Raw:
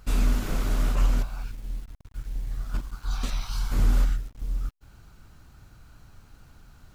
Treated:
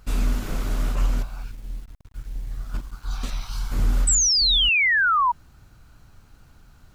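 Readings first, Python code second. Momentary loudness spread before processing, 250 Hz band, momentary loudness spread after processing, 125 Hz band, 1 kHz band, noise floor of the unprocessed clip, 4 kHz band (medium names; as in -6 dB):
14 LU, 0.0 dB, 21 LU, 0.0 dB, +15.5 dB, -55 dBFS, +20.5 dB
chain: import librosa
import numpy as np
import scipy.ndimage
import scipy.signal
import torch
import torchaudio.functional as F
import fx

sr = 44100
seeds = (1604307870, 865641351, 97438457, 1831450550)

y = fx.spec_paint(x, sr, seeds[0], shape='fall', start_s=4.07, length_s=1.25, low_hz=930.0, high_hz=8200.0, level_db=-19.0)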